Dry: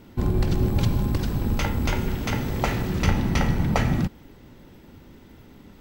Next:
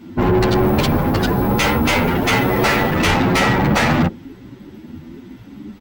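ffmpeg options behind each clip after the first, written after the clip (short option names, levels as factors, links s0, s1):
-filter_complex "[0:a]afftdn=nr=20:nf=-37,asplit=2[s0][s1];[s1]highpass=f=720:p=1,volume=56.2,asoftclip=type=tanh:threshold=0.447[s2];[s0][s2]amix=inputs=2:normalize=0,lowpass=f=5200:p=1,volume=0.501,asplit=2[s3][s4];[s4]adelay=9.7,afreqshift=1[s5];[s3][s5]amix=inputs=2:normalize=1,volume=1.26"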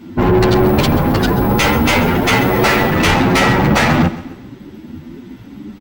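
-af "aecho=1:1:133|266|399|532:0.158|0.0666|0.028|0.0117,volume=1.41"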